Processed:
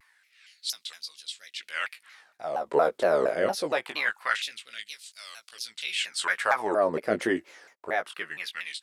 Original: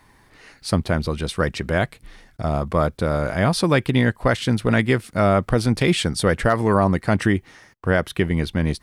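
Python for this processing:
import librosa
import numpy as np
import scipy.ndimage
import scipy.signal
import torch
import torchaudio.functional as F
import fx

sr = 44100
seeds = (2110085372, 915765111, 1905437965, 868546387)

y = fx.rotary(x, sr, hz=0.9)
y = fx.filter_lfo_highpass(y, sr, shape='sine', hz=0.24, low_hz=430.0, high_hz=4600.0, q=1.9)
y = fx.wow_flutter(y, sr, seeds[0], rate_hz=2.1, depth_cents=87.0)
y = fx.doubler(y, sr, ms=18.0, db=-6.0)
y = fx.vibrato_shape(y, sr, shape='saw_down', rate_hz=4.3, depth_cents=250.0)
y = y * 10.0 ** (-4.0 / 20.0)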